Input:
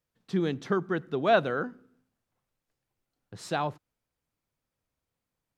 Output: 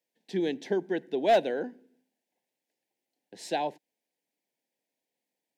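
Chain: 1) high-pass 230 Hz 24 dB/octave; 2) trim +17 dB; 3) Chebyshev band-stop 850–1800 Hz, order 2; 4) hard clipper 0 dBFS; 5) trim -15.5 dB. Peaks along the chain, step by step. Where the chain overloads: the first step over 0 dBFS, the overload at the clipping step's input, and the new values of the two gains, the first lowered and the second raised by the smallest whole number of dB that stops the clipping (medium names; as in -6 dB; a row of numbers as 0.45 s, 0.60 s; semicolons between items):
-9.5 dBFS, +7.5 dBFS, +6.0 dBFS, 0.0 dBFS, -15.5 dBFS; step 2, 6.0 dB; step 2 +11 dB, step 5 -9.5 dB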